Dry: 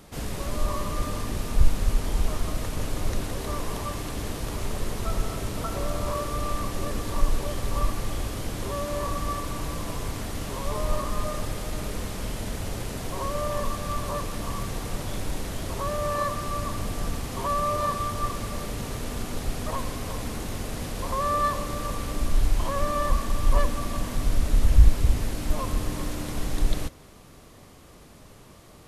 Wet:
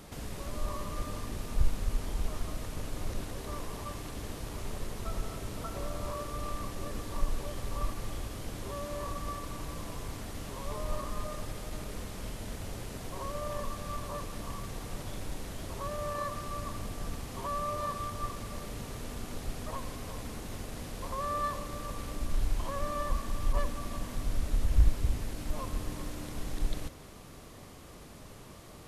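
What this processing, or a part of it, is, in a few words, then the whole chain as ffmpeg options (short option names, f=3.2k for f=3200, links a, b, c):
de-esser from a sidechain: -filter_complex "[0:a]asplit=2[a][b];[b]highpass=f=6.6k:w=0.5412,highpass=f=6.6k:w=1.3066,apad=whole_len=1273338[c];[a][c]sidechaincompress=threshold=-50dB:ratio=8:attack=1.2:release=38"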